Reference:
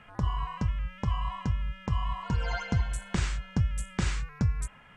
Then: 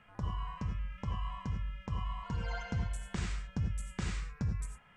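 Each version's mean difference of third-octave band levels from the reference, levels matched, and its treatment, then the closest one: 3.0 dB: gated-style reverb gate 120 ms rising, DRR 5 dB; trim -8.5 dB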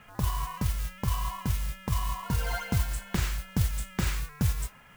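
7.0 dB: modulation noise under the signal 14 dB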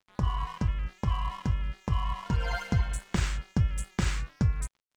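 4.0 dB: crossover distortion -46 dBFS; trim +1.5 dB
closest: first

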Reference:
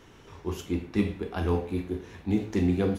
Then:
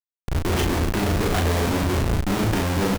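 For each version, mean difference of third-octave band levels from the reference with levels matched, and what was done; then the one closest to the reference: 13.0 dB: dynamic bell 2.3 kHz, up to +5 dB, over -53 dBFS, Q 1.8; in parallel at +2.5 dB: compression, threshold -32 dBFS, peak gain reduction 12.5 dB; on the sum: Schmitt trigger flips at -33.5 dBFS; doubling 36 ms -4 dB; trim +3 dB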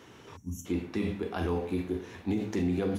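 4.0 dB: hum notches 50/100/150/200 Hz; time-frequency box 0.36–0.66 s, 290–5500 Hz -29 dB; high-pass 94 Hz; peak limiter -23 dBFS, peak gain reduction 10 dB; trim +1.5 dB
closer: second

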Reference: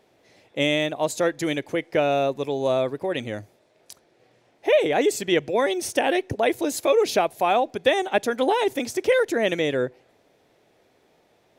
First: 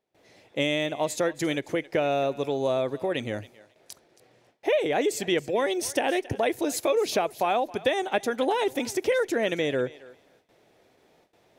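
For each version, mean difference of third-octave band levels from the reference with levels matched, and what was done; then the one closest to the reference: 2.0 dB: gate with hold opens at -52 dBFS; compression 2:1, threshold -24 dBFS, peak gain reduction 6.5 dB; on a send: thinning echo 272 ms, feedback 16%, high-pass 540 Hz, level -18 dB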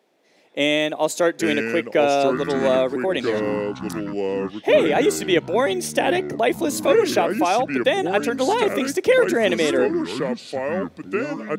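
5.5 dB: high-pass 180 Hz 24 dB/octave; level rider gain up to 8 dB; ever faster or slower copies 637 ms, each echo -5 st, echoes 3, each echo -6 dB; trim -3.5 dB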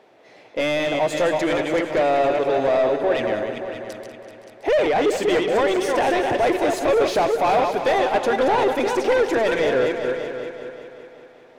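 8.0 dB: chunks repeated in reverse 199 ms, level -7 dB; overdrive pedal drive 24 dB, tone 1.2 kHz, clips at -5.5 dBFS; on a send: multi-head delay 191 ms, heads all three, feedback 42%, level -13.5 dB; on the sum: trim -4.5 dB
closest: first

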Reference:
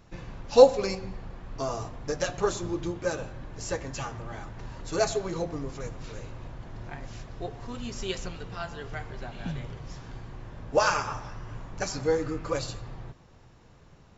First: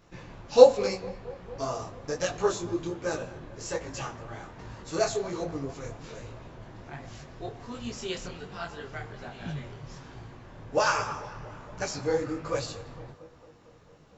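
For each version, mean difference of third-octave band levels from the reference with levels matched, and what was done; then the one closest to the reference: 1.5 dB: bass shelf 73 Hz -9 dB; tape echo 227 ms, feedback 78%, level -18.5 dB, low-pass 2.4 kHz; detune thickener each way 44 cents; trim +3 dB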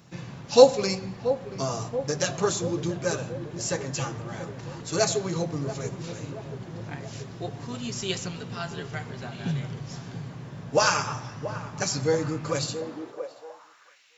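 2.5 dB: treble shelf 3 kHz +9 dB; on a send: filtered feedback delay 681 ms, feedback 71%, low-pass 830 Hz, level -10 dB; on the sum: high-pass sweep 140 Hz -> 2.3 kHz, 12.61–14.03 s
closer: first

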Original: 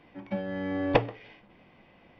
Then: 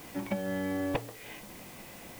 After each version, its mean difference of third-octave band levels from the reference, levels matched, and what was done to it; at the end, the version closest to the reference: 14.0 dB: compression 8:1, threshold -38 dBFS, peak gain reduction 22 dB; in parallel at -10 dB: word length cut 8-bit, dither triangular; on the sum: trim +6 dB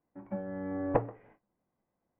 7.0 dB: gate -51 dBFS, range -20 dB; low-pass 1.5 kHz 24 dB/octave; trim -4.5 dB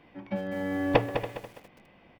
5.0 dB: on a send: delay 283 ms -14.5 dB; on the sum: bit-crushed delay 204 ms, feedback 35%, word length 8-bit, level -8 dB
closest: third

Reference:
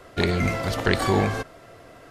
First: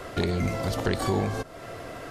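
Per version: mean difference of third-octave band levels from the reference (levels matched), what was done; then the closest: 5.0 dB: dynamic bell 2 kHz, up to -6 dB, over -40 dBFS, Q 0.73; compression 2:1, threshold -41 dBFS, peak gain reduction 13 dB; trim +8.5 dB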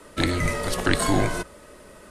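4.0 dB: frequency shift -89 Hz; peaking EQ 9.3 kHz +12 dB 0.73 oct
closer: second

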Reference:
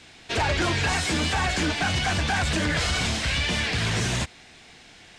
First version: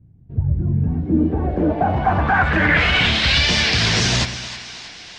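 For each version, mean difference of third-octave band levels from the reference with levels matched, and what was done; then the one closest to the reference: 11.0 dB: low-pass sweep 130 Hz -> 5.2 kHz, 0.49–3.47 s; two-band feedback delay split 760 Hz, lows 114 ms, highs 318 ms, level -12 dB; trim +6 dB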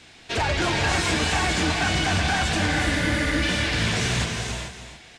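3.5 dB: spectral replace 2.75–3.40 s, 270–8700 Hz before; delay 284 ms -10 dB; gated-style reverb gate 470 ms rising, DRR 3.5 dB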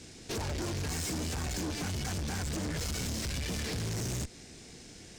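7.0 dB: high-order bell 1.6 kHz -12.5 dB 2.9 oct; compression, threshold -29 dBFS, peak gain reduction 6.5 dB; valve stage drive 39 dB, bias 0.5; trim +6.5 dB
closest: second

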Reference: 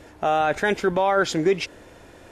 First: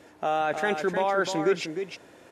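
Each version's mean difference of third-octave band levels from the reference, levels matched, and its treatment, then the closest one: 3.0 dB: high-pass 150 Hz 12 dB/octave; on a send: delay 306 ms -7 dB; on the sum: trim -5 dB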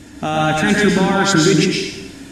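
8.5 dB: graphic EQ 125/250/500/1000/4000/8000 Hz +5/+11/-10/-4/+3/+8 dB; plate-style reverb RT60 0.9 s, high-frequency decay 1×, pre-delay 95 ms, DRR -1.5 dB; trim +4.5 dB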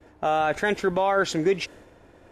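1.5 dB: expander -43 dBFS; tape noise reduction on one side only decoder only; trim -2 dB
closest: third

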